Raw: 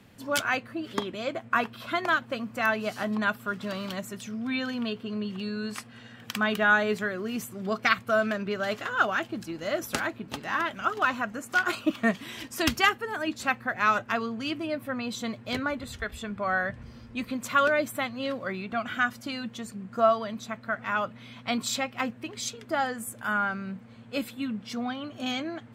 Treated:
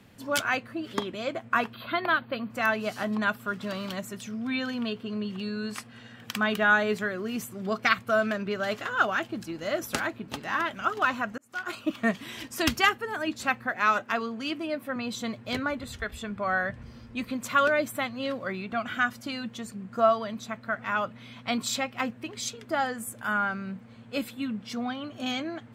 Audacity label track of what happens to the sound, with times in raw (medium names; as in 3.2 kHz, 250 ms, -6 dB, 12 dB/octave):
1.730000	2.500000	time-frequency box 4.8–11 kHz -30 dB
11.380000	12.380000	fade in equal-power
13.700000	14.960000	high-pass 190 Hz